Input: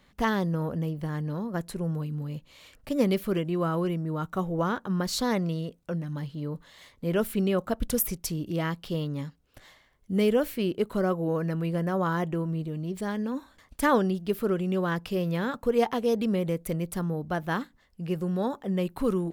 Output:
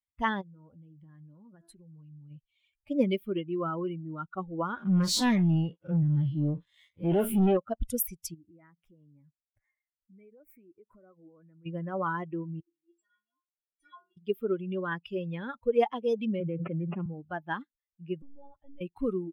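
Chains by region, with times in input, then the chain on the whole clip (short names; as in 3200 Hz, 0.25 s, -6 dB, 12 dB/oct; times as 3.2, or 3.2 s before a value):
0.41–2.31 de-hum 112.3 Hz, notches 21 + compressor 16:1, threshold -33 dBFS
4.77–7.57 time blur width 98 ms + sample leveller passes 3 + bell 11000 Hz +2.5 dB 0.41 oct
8.34–11.66 compressor, threshold -37 dBFS + band shelf 3700 Hz -13.5 dB 1 oct
12.6–14.17 polynomial smoothing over 9 samples + metallic resonator 340 Hz, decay 0.46 s, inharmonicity 0.008
16.4–17.06 median filter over 25 samples + Chebyshev band-pass 150–2900 Hz, order 4 + fast leveller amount 100%
18.22–18.81 compressor 4:1, threshold -35 dBFS + monotone LPC vocoder at 8 kHz 280 Hz
whole clip: per-bin expansion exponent 2; tone controls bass -1 dB, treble -3 dB; gain +2 dB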